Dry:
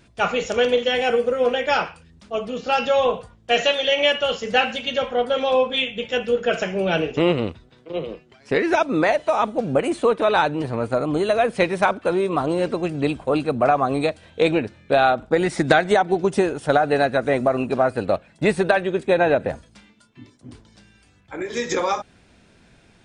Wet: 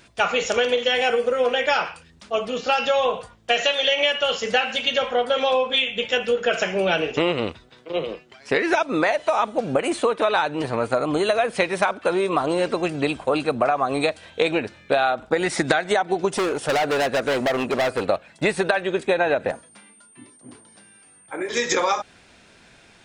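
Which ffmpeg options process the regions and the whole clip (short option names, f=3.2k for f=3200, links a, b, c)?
-filter_complex "[0:a]asettb=1/sr,asplit=3[a][b][c];[a]atrim=end=16.364[d];[b]atrim=start=16.36:end=18.06,asetpts=PTS-STARTPTS,afade=t=in:d=0.004:c=qsin,afade=t=out:st=1.696:d=0.004:c=qsin,equalizer=f=480:w=1.1:g=4,asoftclip=type=hard:threshold=-20dB[e];[c]atrim=start=18.056[f];[d][e]acrossfade=d=0.004:c1=hsin:c2=qsin[g];[g][f]acrossfade=d=0.004:c1=qsin:c2=hsin,asettb=1/sr,asplit=3[h][i][j];[h]atrim=end=19.514[k];[i]atrim=start=19.51:end=21.49,asetpts=PTS-STARTPTS,afade=t=in:d=0.004:c=qsin,afade=t=out:st=1.976:d=0.004:c=qsin,highpass=160,highshelf=f=2.6k:g=-12,aeval=exprs='val(0)+0.00141*sin(2*PI*8800*n/s)':c=same[l];[j]atrim=start=21.486[m];[k][l]acrossfade=d=0.004:c1=hsin:c2=qsin[n];[n][m]acrossfade=d=0.004:c1=qsin:c2=hsin,lowshelf=f=390:g=-11,acompressor=threshold=-23dB:ratio=6,volume=6.5dB"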